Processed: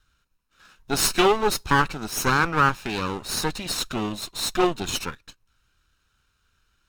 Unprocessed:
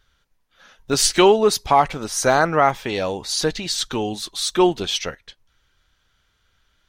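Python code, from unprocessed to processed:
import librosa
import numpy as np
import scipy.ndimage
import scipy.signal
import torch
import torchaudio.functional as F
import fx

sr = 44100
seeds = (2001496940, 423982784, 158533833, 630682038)

y = fx.lower_of_two(x, sr, delay_ms=0.75)
y = y * librosa.db_to_amplitude(-2.0)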